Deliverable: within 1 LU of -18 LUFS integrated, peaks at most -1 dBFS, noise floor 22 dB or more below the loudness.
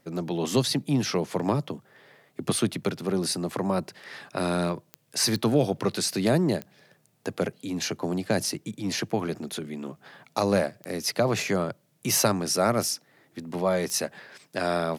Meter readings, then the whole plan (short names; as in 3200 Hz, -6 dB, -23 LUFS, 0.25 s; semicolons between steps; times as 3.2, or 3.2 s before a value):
clicks 5; loudness -27.5 LUFS; peak -8.5 dBFS; loudness target -18.0 LUFS
-> de-click; gain +9.5 dB; limiter -1 dBFS